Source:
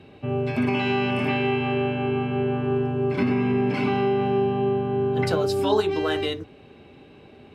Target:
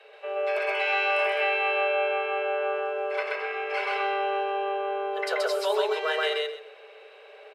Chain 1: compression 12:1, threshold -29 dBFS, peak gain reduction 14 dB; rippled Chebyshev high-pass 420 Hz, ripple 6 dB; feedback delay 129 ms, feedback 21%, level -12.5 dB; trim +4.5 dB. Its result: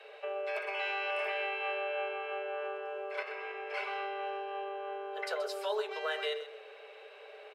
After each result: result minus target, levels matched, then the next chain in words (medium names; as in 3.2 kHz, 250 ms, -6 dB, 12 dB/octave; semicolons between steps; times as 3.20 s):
echo-to-direct -11.5 dB; compression: peak gain reduction +7 dB
compression 12:1, threshold -29 dBFS, peak gain reduction 14 dB; rippled Chebyshev high-pass 420 Hz, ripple 6 dB; feedback delay 129 ms, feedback 21%, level -1 dB; trim +4.5 dB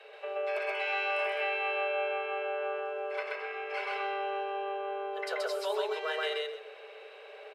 compression: peak gain reduction +7 dB
compression 12:1, threshold -21.5 dBFS, peak gain reduction 7 dB; rippled Chebyshev high-pass 420 Hz, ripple 6 dB; feedback delay 129 ms, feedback 21%, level -1 dB; trim +4.5 dB